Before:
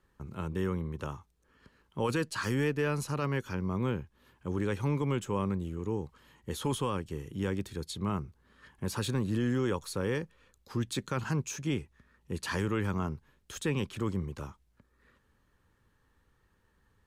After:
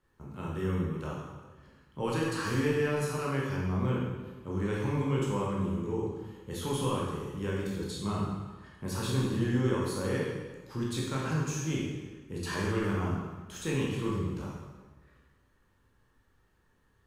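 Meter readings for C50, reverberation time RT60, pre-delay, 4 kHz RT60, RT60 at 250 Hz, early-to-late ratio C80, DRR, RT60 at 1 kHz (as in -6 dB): 0.0 dB, 1.3 s, 14 ms, 1.2 s, 1.4 s, 2.5 dB, -5.0 dB, 1.3 s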